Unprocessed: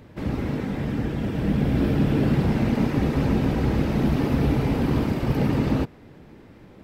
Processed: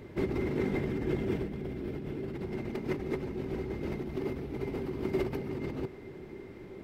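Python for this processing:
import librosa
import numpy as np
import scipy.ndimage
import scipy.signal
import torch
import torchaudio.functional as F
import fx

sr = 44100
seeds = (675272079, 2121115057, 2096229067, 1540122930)

y = fx.over_compress(x, sr, threshold_db=-29.0, ratio=-1.0)
y = fx.small_body(y, sr, hz=(380.0, 2100.0), ring_ms=75, db=15)
y = y * librosa.db_to_amplitude(-8.5)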